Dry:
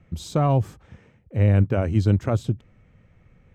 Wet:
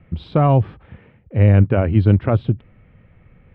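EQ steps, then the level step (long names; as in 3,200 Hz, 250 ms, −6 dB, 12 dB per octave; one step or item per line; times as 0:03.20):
inverse Chebyshev low-pass filter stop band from 6,200 Hz, stop band 40 dB
+5.5 dB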